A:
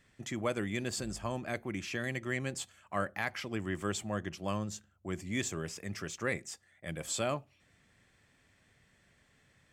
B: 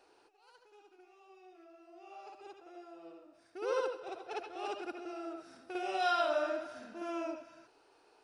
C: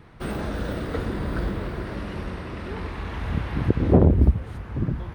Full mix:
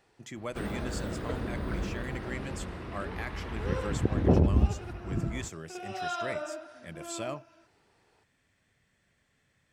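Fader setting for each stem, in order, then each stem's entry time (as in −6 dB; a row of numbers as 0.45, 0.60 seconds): −4.5, −3.5, −6.5 decibels; 0.00, 0.00, 0.35 seconds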